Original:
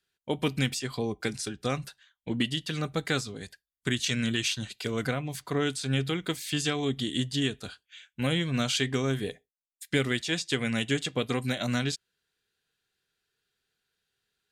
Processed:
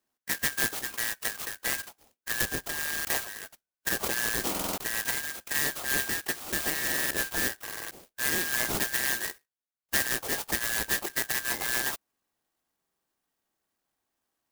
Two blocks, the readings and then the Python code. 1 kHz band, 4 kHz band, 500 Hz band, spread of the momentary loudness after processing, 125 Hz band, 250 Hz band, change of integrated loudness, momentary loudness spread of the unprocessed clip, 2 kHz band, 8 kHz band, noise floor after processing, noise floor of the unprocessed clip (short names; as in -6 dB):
+0.5 dB, -3.0 dB, -7.0 dB, 8 LU, -15.0 dB, -11.5 dB, +1.0 dB, 10 LU, +5.0 dB, +7.0 dB, under -85 dBFS, under -85 dBFS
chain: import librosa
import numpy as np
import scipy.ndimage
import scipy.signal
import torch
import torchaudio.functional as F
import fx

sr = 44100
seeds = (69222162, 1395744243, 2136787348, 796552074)

y = fx.band_shuffle(x, sr, order='3142')
y = fx.buffer_glitch(y, sr, at_s=(2.77, 4.5, 6.83, 7.63, 9.61, 12.78), block=2048, repeats=5)
y = fx.clock_jitter(y, sr, seeds[0], jitter_ms=0.094)
y = y * 10.0 ** (-1.0 / 20.0)